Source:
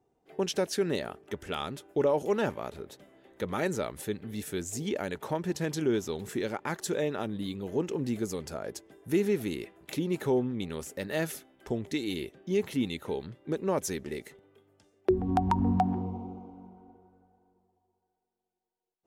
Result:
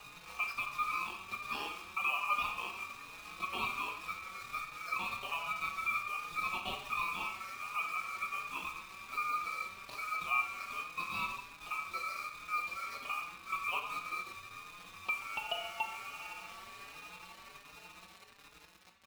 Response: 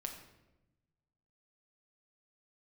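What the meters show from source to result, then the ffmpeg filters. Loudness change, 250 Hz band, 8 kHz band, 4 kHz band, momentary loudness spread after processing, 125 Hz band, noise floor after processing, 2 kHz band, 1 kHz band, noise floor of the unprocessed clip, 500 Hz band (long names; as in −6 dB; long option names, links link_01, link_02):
−5.5 dB, −26.0 dB, −10.5 dB, −2.0 dB, 15 LU, −24.0 dB, −57 dBFS, +5.5 dB, −0.5 dB, −82 dBFS, −23.0 dB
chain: -filter_complex "[0:a]tiltshelf=frequency=890:gain=4,asplit=2[link_01][link_02];[link_02]acompressor=threshold=-34dB:ratio=6,volume=-1dB[link_03];[link_01][link_03]amix=inputs=2:normalize=0,alimiter=limit=-15.5dB:level=0:latency=1:release=405,acompressor=mode=upward:threshold=-34dB:ratio=2.5,highpass=frequency=340:width_type=q:width=0.5412,highpass=frequency=340:width_type=q:width=1.307,lowpass=frequency=3200:width_type=q:width=0.5176,lowpass=frequency=3200:width_type=q:width=0.7071,lowpass=frequency=3200:width_type=q:width=1.932,afreqshift=180,aeval=exprs='val(0)+0.00631*sin(2*PI*660*n/s)':channel_layout=same,acrusher=bits=6:mix=0:aa=0.000001[link_04];[1:a]atrim=start_sample=2205[link_05];[link_04][link_05]afir=irnorm=-1:irlink=0,aeval=exprs='val(0)*sin(2*PI*1800*n/s)':channel_layout=same,asplit=2[link_06][link_07];[link_07]adelay=4.5,afreqshift=1.3[link_08];[link_06][link_08]amix=inputs=2:normalize=1"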